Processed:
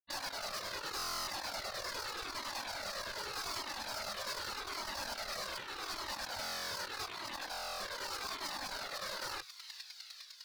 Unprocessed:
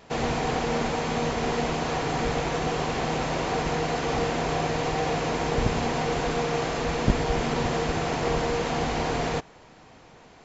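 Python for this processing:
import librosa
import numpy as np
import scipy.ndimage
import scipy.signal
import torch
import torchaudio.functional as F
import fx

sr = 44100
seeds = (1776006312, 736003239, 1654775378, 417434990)

y = fx.filter_lfo_notch(x, sr, shape='saw_up', hz=6.7, low_hz=720.0, high_hz=1900.0, q=1.2)
y = fx.fuzz(y, sr, gain_db=41.0, gate_db=-38.0)
y = fx.curve_eq(y, sr, hz=(130.0, 620.0, 3300.0, 7100.0), db=(0, -9, 13, -12))
y = fx.spec_gate(y, sr, threshold_db=-15, keep='weak')
y = fx.echo_wet_highpass(y, sr, ms=424, feedback_pct=75, hz=2600.0, wet_db=-24)
y = fx.chopper(y, sr, hz=9.9, depth_pct=65, duty_pct=10)
y = fx.dynamic_eq(y, sr, hz=4300.0, q=0.79, threshold_db=-50.0, ratio=4.0, max_db=-4)
y = fx.over_compress(y, sr, threshold_db=-42.0, ratio=-1.0)
y = 10.0 ** (-37.0 / 20.0) * np.tanh(y / 10.0 ** (-37.0 / 20.0))
y = fx.buffer_glitch(y, sr, at_s=(0.97, 6.41, 7.5), block=1024, repeats=12)
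y = fx.comb_cascade(y, sr, direction='falling', hz=0.83)
y = y * librosa.db_to_amplitude(6.5)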